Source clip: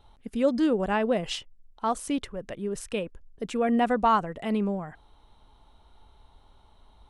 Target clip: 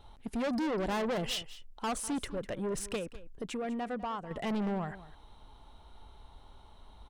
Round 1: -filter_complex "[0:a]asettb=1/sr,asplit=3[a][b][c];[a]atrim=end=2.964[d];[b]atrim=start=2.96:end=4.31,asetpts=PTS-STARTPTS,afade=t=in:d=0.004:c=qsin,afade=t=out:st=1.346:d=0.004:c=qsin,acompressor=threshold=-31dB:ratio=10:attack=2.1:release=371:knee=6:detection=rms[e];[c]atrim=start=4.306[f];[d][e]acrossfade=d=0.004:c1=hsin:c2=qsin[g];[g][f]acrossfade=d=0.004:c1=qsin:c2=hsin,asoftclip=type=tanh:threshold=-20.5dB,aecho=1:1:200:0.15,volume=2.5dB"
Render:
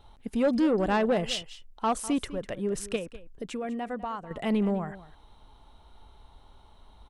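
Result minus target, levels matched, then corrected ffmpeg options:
soft clip: distortion -10 dB
-filter_complex "[0:a]asettb=1/sr,asplit=3[a][b][c];[a]atrim=end=2.964[d];[b]atrim=start=2.96:end=4.31,asetpts=PTS-STARTPTS,afade=t=in:d=0.004:c=qsin,afade=t=out:st=1.346:d=0.004:c=qsin,acompressor=threshold=-31dB:ratio=10:attack=2.1:release=371:knee=6:detection=rms[e];[c]atrim=start=4.306[f];[d][e]acrossfade=d=0.004:c1=hsin:c2=qsin[g];[g][f]acrossfade=d=0.004:c1=qsin:c2=hsin,asoftclip=type=tanh:threshold=-32.5dB,aecho=1:1:200:0.15,volume=2.5dB"

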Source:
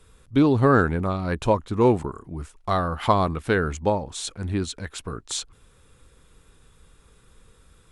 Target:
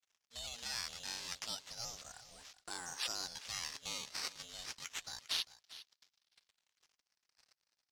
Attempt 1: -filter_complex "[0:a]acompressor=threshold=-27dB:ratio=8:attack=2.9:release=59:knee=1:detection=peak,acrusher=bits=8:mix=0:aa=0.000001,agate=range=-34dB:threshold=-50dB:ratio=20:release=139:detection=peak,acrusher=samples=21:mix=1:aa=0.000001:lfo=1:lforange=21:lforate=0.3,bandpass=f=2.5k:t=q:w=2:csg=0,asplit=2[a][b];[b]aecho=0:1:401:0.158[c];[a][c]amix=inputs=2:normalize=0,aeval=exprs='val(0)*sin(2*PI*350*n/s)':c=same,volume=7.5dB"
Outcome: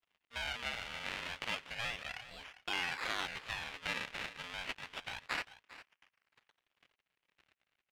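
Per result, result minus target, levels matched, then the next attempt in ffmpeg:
2000 Hz band +8.0 dB; decimation with a swept rate: distortion +5 dB
-filter_complex "[0:a]acompressor=threshold=-27dB:ratio=8:attack=2.9:release=59:knee=1:detection=peak,acrusher=bits=8:mix=0:aa=0.000001,agate=range=-34dB:threshold=-50dB:ratio=20:release=139:detection=peak,acrusher=samples=21:mix=1:aa=0.000001:lfo=1:lforange=21:lforate=0.3,bandpass=f=5.1k:t=q:w=2:csg=0,asplit=2[a][b];[b]aecho=0:1:401:0.158[c];[a][c]amix=inputs=2:normalize=0,aeval=exprs='val(0)*sin(2*PI*350*n/s)':c=same,volume=7.5dB"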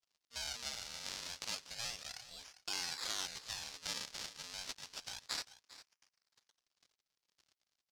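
decimation with a swept rate: distortion +5 dB
-filter_complex "[0:a]acompressor=threshold=-27dB:ratio=8:attack=2.9:release=59:knee=1:detection=peak,acrusher=bits=8:mix=0:aa=0.000001,agate=range=-34dB:threshold=-50dB:ratio=20:release=139:detection=peak,acrusher=samples=9:mix=1:aa=0.000001:lfo=1:lforange=9:lforate=0.3,bandpass=f=5.1k:t=q:w=2:csg=0,asplit=2[a][b];[b]aecho=0:1:401:0.158[c];[a][c]amix=inputs=2:normalize=0,aeval=exprs='val(0)*sin(2*PI*350*n/s)':c=same,volume=7.5dB"

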